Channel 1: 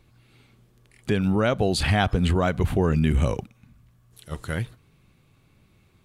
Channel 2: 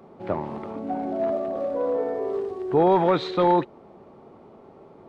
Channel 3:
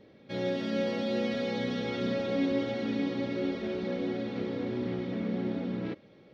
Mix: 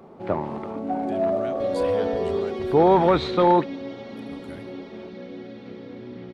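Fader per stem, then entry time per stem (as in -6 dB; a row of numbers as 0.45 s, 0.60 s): -16.5 dB, +2.0 dB, -5.5 dB; 0.00 s, 0.00 s, 1.30 s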